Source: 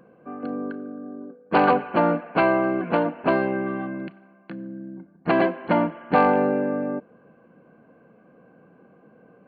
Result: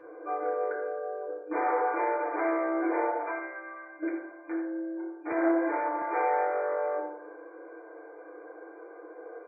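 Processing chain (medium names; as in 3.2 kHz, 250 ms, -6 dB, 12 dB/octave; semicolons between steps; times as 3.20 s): 3.22–4.03 s: differentiator; on a send: early reflections 53 ms -15 dB, 78 ms -13 dB; on the sum: overload inside the chain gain 22 dB; FFT band-pass 310–2400 Hz; in parallel at 0 dB: compression, threshold -37 dBFS, peak gain reduction 13.5 dB; on the sum: peak limiter -25.5 dBFS, peak gain reduction 10 dB; FDN reverb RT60 0.65 s, low-frequency decay 1.3×, high-frequency decay 0.3×, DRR -5.5 dB; 5.32–6.02 s: three bands expanded up and down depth 40%; trim -4.5 dB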